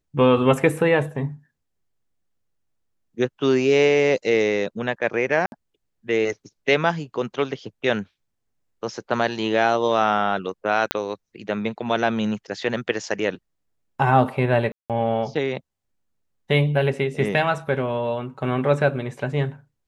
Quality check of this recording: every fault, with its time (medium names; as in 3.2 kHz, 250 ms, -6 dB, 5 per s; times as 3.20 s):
5.46–5.52 s: dropout 61 ms
10.91 s: pop -5 dBFS
14.72–14.90 s: dropout 177 ms